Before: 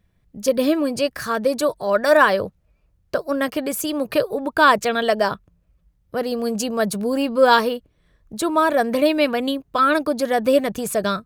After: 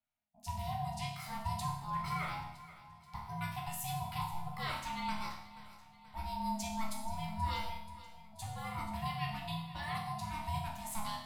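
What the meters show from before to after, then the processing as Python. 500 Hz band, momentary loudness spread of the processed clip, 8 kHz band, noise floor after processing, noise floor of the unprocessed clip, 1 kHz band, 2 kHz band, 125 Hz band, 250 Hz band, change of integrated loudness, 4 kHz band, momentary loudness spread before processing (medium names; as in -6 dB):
-33.0 dB, 12 LU, -15.0 dB, -59 dBFS, -64 dBFS, -16.0 dB, -22.0 dB, -1.0 dB, -22.5 dB, -20.0 dB, -16.5 dB, 10 LU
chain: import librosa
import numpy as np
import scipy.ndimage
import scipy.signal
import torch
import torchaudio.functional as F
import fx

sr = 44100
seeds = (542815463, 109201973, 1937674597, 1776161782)

y = scipy.signal.sosfilt(scipy.signal.butter(4, 260.0, 'highpass', fs=sr, output='sos'), x)
y = fx.band_shelf(y, sr, hz=960.0, db=-14.5, octaves=1.3)
y = fx.notch(y, sr, hz=6000.0, q=16.0)
y = fx.rider(y, sr, range_db=3, speed_s=0.5)
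y = y * np.sin(2.0 * np.pi * 440.0 * np.arange(len(y)) / sr)
y = fx.resonator_bank(y, sr, root=37, chord='minor', decay_s=0.74)
y = fx.echo_feedback(y, sr, ms=481, feedback_pct=56, wet_db=-16.5)
y = y * 10.0 ** (3.0 / 20.0)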